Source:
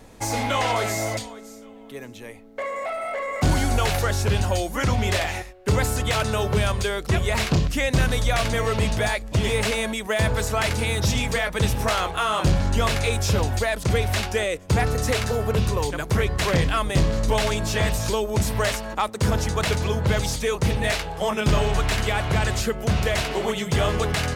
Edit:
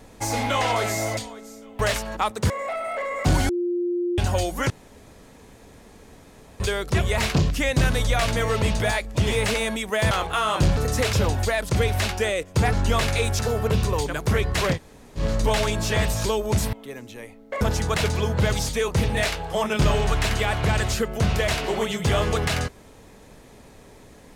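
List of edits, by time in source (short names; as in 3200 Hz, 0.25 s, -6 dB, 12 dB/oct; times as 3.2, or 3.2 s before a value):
1.79–2.67 swap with 18.57–19.28
3.66–4.35 bleep 351 Hz -21.5 dBFS
4.87–6.77 room tone
10.28–11.95 cut
12.61–13.27 swap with 14.87–15.23
16.58–17.04 room tone, crossfade 0.10 s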